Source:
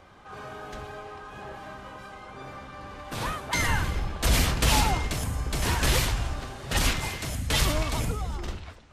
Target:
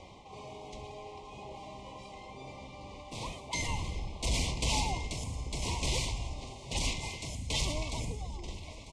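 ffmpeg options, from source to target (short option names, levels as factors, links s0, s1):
-filter_complex "[0:a]asoftclip=type=tanh:threshold=0.251,lowpass=f=8200:w=0.5412,lowpass=f=8200:w=1.3066,asplit=2[s0][s1];[s1]aecho=0:1:946|1892|2838:0.0708|0.0269|0.0102[s2];[s0][s2]amix=inputs=2:normalize=0,areverse,acompressor=mode=upward:threshold=0.0316:ratio=2.5,areverse,asuperstop=centerf=1500:order=12:qfactor=1.6,highshelf=f=4300:g=5.5,volume=0.398"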